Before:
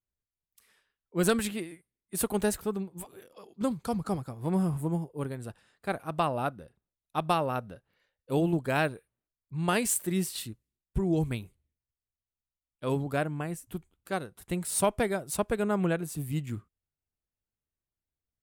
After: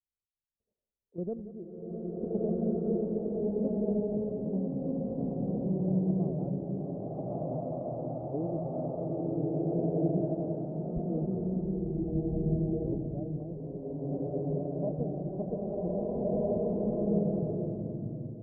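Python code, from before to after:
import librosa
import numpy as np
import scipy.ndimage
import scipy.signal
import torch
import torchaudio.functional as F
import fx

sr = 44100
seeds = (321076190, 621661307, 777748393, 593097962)

p1 = scipy.signal.sosfilt(scipy.signal.ellip(4, 1.0, 80, 640.0, 'lowpass', fs=sr, output='sos'), x)
p2 = fx.level_steps(p1, sr, step_db=9)
p3 = p2 + fx.echo_single(p2, sr, ms=180, db=-14.5, dry=0)
p4 = fx.rev_bloom(p3, sr, seeds[0], attack_ms=1630, drr_db=-10.0)
y = F.gain(torch.from_numpy(p4), -5.5).numpy()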